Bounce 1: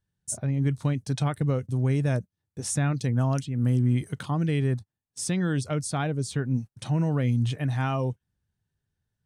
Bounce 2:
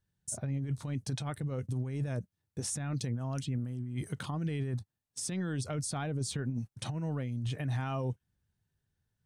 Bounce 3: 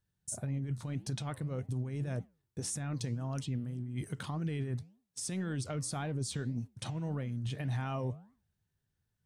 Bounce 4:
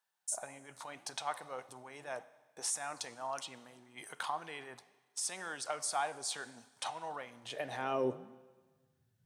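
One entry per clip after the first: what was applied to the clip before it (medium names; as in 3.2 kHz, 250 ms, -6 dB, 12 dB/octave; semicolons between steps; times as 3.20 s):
compressor with a negative ratio -27 dBFS, ratio -0.5; peak limiter -23 dBFS, peak gain reduction 8.5 dB; trim -3.5 dB
flange 1.8 Hz, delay 5.4 ms, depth 7.6 ms, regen -89%; trim +3 dB
high-pass sweep 830 Hz -> 120 Hz, 7.26–9.03 s; Schroeder reverb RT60 1.4 s, combs from 31 ms, DRR 16 dB; trim +2.5 dB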